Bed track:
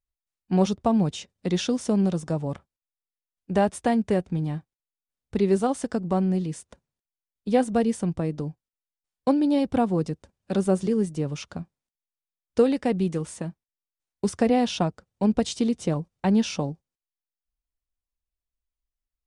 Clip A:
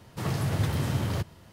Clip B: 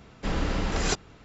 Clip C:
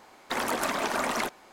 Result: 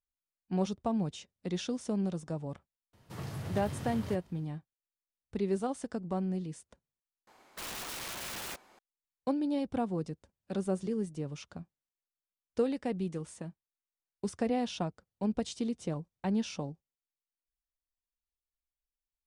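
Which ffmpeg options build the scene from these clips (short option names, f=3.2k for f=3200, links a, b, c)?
-filter_complex "[0:a]volume=-10dB[a];[3:a]aeval=exprs='(mod(23.7*val(0)+1,2)-1)/23.7':c=same[b];[a]asplit=2[c][d];[c]atrim=end=7.274[e];[b]atrim=end=1.52,asetpts=PTS-STARTPTS,volume=-8dB[f];[d]atrim=start=8.786[g];[1:a]atrim=end=1.52,asetpts=PTS-STARTPTS,volume=-11.5dB,afade=t=in:d=0.004:c=hsin,afade=t=out:st=1.516:d=0.004:c=hsin,adelay=2930[h];[e][f]acrossfade=d=0.004:c1=hsin:c2=hsin[i];[i][g]acrossfade=d=0.004:c1=hsin:c2=hsin[j];[j][h]amix=inputs=2:normalize=0"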